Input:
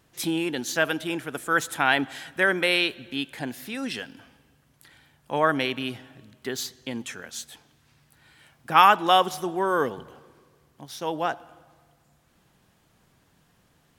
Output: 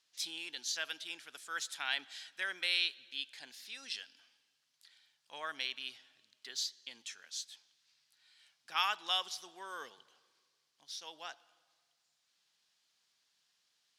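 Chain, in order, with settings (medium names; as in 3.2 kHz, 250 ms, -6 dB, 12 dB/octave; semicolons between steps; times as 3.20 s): band-pass filter 4.7 kHz, Q 1.9; trim -1.5 dB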